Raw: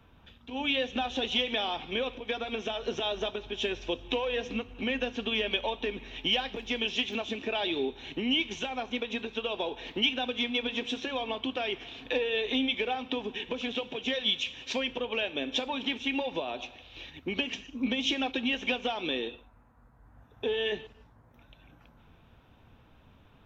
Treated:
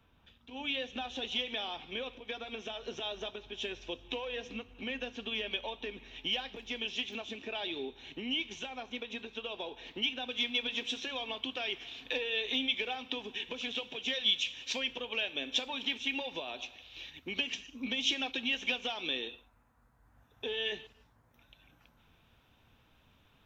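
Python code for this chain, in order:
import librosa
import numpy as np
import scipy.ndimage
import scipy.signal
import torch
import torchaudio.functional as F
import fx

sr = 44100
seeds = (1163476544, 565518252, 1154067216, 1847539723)

y = fx.high_shelf(x, sr, hz=2000.0, db=fx.steps((0.0, 5.0), (10.29, 12.0)))
y = F.gain(torch.from_numpy(y), -9.0).numpy()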